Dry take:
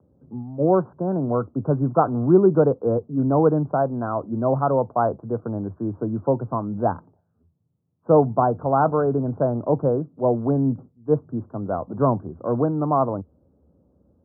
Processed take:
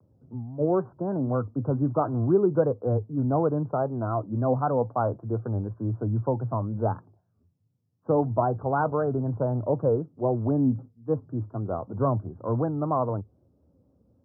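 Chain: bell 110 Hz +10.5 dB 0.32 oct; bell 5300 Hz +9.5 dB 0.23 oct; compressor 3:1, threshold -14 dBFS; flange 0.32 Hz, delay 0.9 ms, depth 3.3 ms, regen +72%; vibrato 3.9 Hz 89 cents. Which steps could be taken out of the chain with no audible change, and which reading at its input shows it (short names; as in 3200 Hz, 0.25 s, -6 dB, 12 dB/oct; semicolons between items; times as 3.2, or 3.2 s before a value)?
bell 5300 Hz: input band ends at 1400 Hz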